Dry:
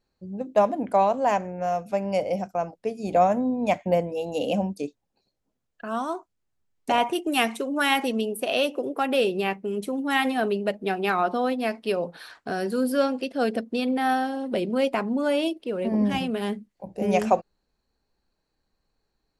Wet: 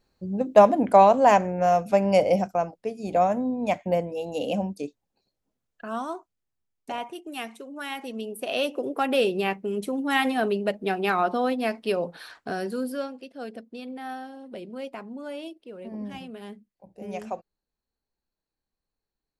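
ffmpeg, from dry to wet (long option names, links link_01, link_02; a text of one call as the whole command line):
ffmpeg -i in.wav -af "volume=17.5dB,afade=type=out:start_time=2.33:duration=0.45:silence=0.421697,afade=type=out:start_time=5.86:duration=1.21:silence=0.316228,afade=type=in:start_time=7.99:duration=0.94:silence=0.251189,afade=type=out:start_time=12.37:duration=0.76:silence=0.237137" out.wav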